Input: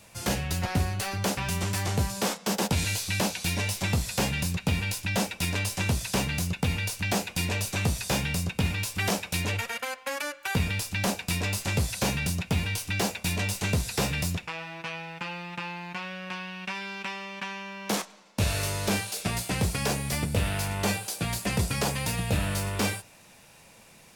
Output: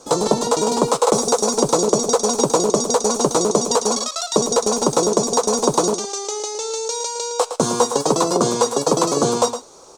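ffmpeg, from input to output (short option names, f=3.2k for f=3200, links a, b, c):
-af "firequalizer=gain_entry='entry(110,0);entry(160,9);entry(400,12);entry(750,-15);entry(1600,3);entry(3300,8);entry(5300,-19);entry(11000,-25)':delay=0.05:min_phase=1,asetrate=106722,aresample=44100,aecho=1:1:112:0.299,volume=5dB"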